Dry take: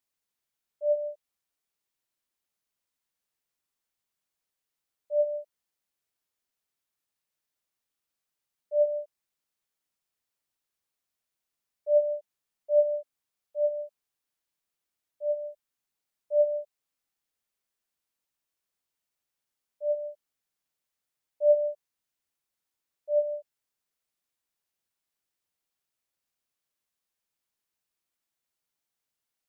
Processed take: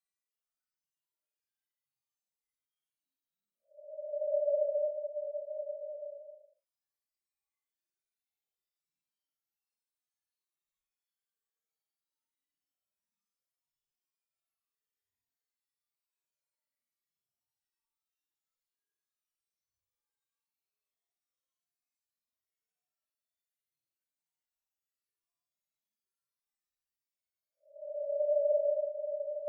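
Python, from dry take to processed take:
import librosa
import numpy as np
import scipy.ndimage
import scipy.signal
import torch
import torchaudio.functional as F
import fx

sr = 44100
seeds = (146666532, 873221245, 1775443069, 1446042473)

y = fx.spec_expand(x, sr, power=3.8)
y = fx.paulstretch(y, sr, seeds[0], factor=7.6, window_s=0.05, from_s=8.21)
y = y * librosa.db_to_amplitude(-9.0)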